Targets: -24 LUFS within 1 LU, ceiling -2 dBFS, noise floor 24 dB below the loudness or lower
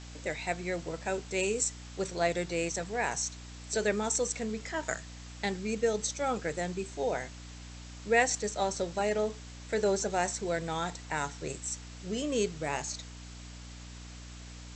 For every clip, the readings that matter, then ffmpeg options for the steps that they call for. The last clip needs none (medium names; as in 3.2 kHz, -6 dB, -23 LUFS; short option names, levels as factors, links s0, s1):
hum 60 Hz; highest harmonic 300 Hz; hum level -44 dBFS; noise floor -46 dBFS; noise floor target -57 dBFS; loudness -32.5 LUFS; peak level -11.0 dBFS; loudness target -24.0 LUFS
-> -af "bandreject=f=60:t=h:w=6,bandreject=f=120:t=h:w=6,bandreject=f=180:t=h:w=6,bandreject=f=240:t=h:w=6,bandreject=f=300:t=h:w=6"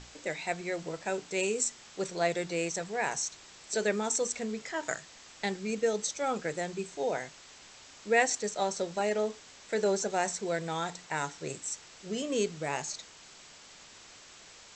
hum not found; noise floor -53 dBFS; noise floor target -57 dBFS
-> -af "afftdn=nr=6:nf=-53"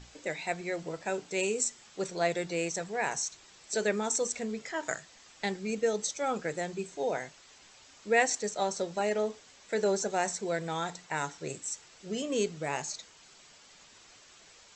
noise floor -57 dBFS; loudness -32.5 LUFS; peak level -11.0 dBFS; loudness target -24.0 LUFS
-> -af "volume=2.66"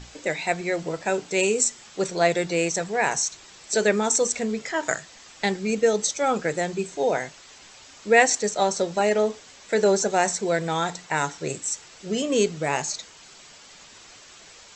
loudness -24.0 LUFS; peak level -2.5 dBFS; noise floor -48 dBFS